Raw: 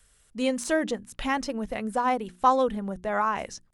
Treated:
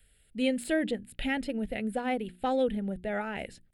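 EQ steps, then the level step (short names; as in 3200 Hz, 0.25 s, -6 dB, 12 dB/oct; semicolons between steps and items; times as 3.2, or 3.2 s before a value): fixed phaser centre 2600 Hz, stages 4; 0.0 dB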